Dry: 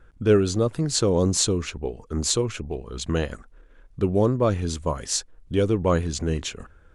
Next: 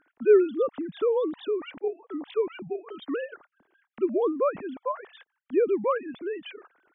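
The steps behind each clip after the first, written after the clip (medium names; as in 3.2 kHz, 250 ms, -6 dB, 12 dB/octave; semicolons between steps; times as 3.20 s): formants replaced by sine waves; trim -3.5 dB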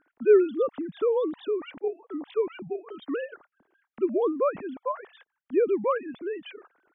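tape noise reduction on one side only decoder only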